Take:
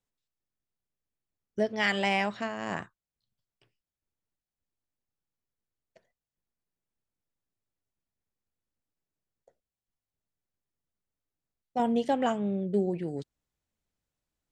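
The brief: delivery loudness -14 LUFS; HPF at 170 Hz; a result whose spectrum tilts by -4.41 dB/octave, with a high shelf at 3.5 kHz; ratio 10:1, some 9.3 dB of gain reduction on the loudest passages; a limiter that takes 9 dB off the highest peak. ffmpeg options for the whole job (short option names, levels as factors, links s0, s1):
-af "highpass=170,highshelf=f=3500:g=5.5,acompressor=threshold=0.0282:ratio=10,volume=18.8,alimiter=limit=0.708:level=0:latency=1"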